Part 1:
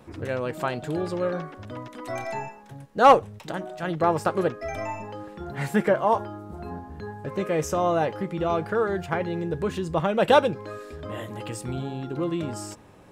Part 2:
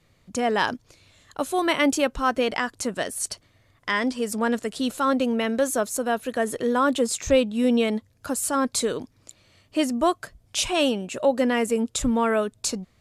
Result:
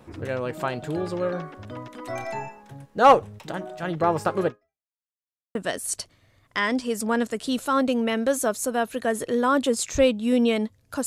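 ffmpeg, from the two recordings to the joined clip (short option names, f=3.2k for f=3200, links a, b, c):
-filter_complex "[0:a]apad=whole_dur=11.06,atrim=end=11.06,asplit=2[a][b];[a]atrim=end=4.89,asetpts=PTS-STARTPTS,afade=t=out:st=4.48:d=0.41:c=exp[c];[b]atrim=start=4.89:end=5.55,asetpts=PTS-STARTPTS,volume=0[d];[1:a]atrim=start=2.87:end=8.38,asetpts=PTS-STARTPTS,afade=t=in:d=0.004:c=hsin[e];[c][d][e]concat=n=3:v=0:a=1"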